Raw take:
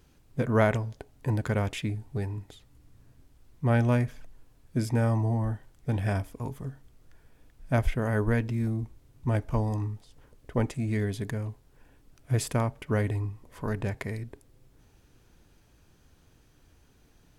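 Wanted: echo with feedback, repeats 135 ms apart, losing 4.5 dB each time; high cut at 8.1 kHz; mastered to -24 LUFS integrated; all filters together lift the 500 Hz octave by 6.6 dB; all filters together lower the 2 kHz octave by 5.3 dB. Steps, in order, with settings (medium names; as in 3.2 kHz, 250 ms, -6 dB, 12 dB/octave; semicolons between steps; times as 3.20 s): low-pass 8.1 kHz; peaking EQ 500 Hz +8.5 dB; peaking EQ 2 kHz -8 dB; feedback delay 135 ms, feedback 60%, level -4.5 dB; trim +2 dB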